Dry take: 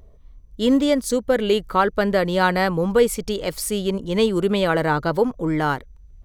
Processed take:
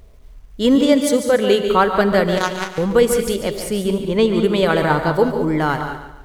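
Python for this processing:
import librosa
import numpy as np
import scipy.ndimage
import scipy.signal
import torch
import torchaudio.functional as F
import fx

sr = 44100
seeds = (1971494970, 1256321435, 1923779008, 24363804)

p1 = fx.highpass(x, sr, hz=83.0, slope=12, at=(0.75, 1.68))
p2 = fx.high_shelf(p1, sr, hz=4400.0, db=-9.5, at=(3.34, 4.44))
p3 = fx.level_steps(p2, sr, step_db=9)
p4 = p2 + (p3 * librosa.db_to_amplitude(-1.0))
p5 = fx.power_curve(p4, sr, exponent=3.0, at=(2.37, 2.78))
p6 = fx.quant_dither(p5, sr, seeds[0], bits=10, dither='none')
p7 = p6 + fx.echo_feedback(p6, sr, ms=143, feedback_pct=37, wet_db=-10.0, dry=0)
p8 = fx.rev_gated(p7, sr, seeds[1], gate_ms=230, shape='rising', drr_db=8.0)
y = p8 * librosa.db_to_amplitude(-1.0)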